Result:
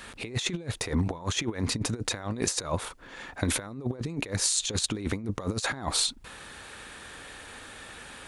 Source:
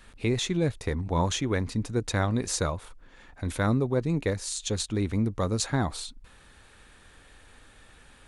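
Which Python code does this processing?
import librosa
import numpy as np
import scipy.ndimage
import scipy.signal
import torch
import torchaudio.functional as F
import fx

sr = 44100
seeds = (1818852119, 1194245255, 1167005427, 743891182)

y = fx.highpass(x, sr, hz=86.0, slope=6)
y = fx.low_shelf(y, sr, hz=200.0, db=-6.0)
y = fx.over_compress(y, sr, threshold_db=-35.0, ratio=-0.5)
y = y * librosa.db_to_amplitude(6.0)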